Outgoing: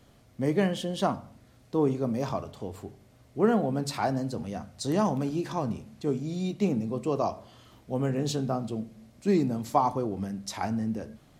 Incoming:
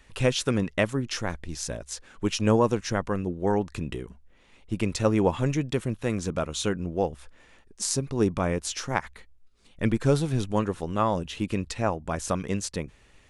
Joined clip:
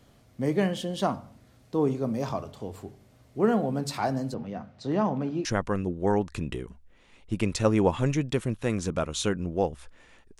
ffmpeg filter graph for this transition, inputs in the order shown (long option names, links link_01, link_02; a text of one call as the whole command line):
ffmpeg -i cue0.wav -i cue1.wav -filter_complex "[0:a]asettb=1/sr,asplit=3[link_01][link_02][link_03];[link_01]atrim=end=4.344[link_04];[link_02]atrim=start=4.34:end=5.45,asetpts=PTS-STARTPTS,afade=type=in:duration=0.004:curve=qsin,afade=type=out:start_time=1.106:duration=0.004:curve=qsin,highpass=110,lowpass=2800[link_05];[link_03]atrim=start=5.446[link_06];[link_04][link_05]acrossfade=duration=0.004:curve1=hsin:curve2=qsin[link_07];[link_07][link_06]acrossfade=duration=0.004:curve1=qsin:curve2=hsin,apad=whole_dur=10.39,atrim=end=10.39,atrim=end=5.452[link_08];[1:a]atrim=start=2.848:end=7.79[link_09];[link_08][link_09]acrossfade=duration=0.004:curve1=hsin:curve2=hsin" out.wav